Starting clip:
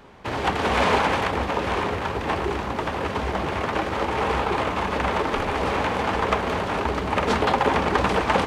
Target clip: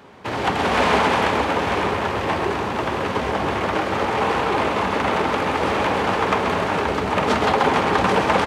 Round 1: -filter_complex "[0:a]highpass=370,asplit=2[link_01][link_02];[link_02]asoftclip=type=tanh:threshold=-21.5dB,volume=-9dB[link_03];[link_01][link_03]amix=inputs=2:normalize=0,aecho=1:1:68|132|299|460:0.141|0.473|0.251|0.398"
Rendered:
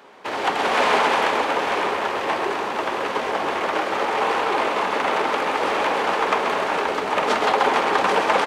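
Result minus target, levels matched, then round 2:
125 Hz band −14.5 dB
-filter_complex "[0:a]highpass=98,asplit=2[link_01][link_02];[link_02]asoftclip=type=tanh:threshold=-21.5dB,volume=-9dB[link_03];[link_01][link_03]amix=inputs=2:normalize=0,aecho=1:1:68|132|299|460:0.141|0.473|0.251|0.398"

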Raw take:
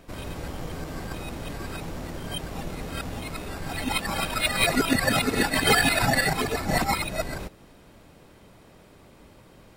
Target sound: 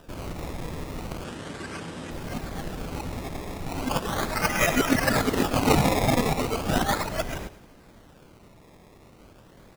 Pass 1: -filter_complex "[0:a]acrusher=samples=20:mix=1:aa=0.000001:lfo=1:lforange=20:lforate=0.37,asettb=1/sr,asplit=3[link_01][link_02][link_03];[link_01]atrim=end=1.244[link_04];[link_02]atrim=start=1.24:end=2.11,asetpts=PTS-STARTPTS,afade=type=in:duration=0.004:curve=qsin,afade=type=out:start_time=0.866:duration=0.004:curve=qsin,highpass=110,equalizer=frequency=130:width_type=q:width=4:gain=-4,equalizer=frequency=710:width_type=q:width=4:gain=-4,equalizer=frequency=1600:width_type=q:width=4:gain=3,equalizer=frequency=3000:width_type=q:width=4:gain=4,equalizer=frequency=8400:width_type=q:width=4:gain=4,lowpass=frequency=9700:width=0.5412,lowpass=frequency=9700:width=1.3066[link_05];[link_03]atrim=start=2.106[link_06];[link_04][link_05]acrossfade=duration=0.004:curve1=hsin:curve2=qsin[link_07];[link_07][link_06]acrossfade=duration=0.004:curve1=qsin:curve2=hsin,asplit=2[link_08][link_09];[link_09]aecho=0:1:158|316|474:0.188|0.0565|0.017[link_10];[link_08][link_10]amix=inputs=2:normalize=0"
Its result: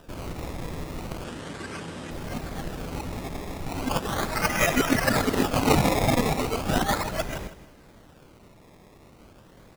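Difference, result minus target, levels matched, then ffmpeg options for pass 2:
echo 47 ms late
-filter_complex "[0:a]acrusher=samples=20:mix=1:aa=0.000001:lfo=1:lforange=20:lforate=0.37,asettb=1/sr,asplit=3[link_01][link_02][link_03];[link_01]atrim=end=1.244[link_04];[link_02]atrim=start=1.24:end=2.11,asetpts=PTS-STARTPTS,afade=type=in:duration=0.004:curve=qsin,afade=type=out:start_time=0.866:duration=0.004:curve=qsin,highpass=110,equalizer=frequency=130:width_type=q:width=4:gain=-4,equalizer=frequency=710:width_type=q:width=4:gain=-4,equalizer=frequency=1600:width_type=q:width=4:gain=3,equalizer=frequency=3000:width_type=q:width=4:gain=4,equalizer=frequency=8400:width_type=q:width=4:gain=4,lowpass=frequency=9700:width=0.5412,lowpass=frequency=9700:width=1.3066[link_05];[link_03]atrim=start=2.106[link_06];[link_04][link_05]acrossfade=duration=0.004:curve1=hsin:curve2=qsin[link_07];[link_07][link_06]acrossfade=duration=0.004:curve1=qsin:curve2=hsin,asplit=2[link_08][link_09];[link_09]aecho=0:1:111|222|333:0.188|0.0565|0.017[link_10];[link_08][link_10]amix=inputs=2:normalize=0"

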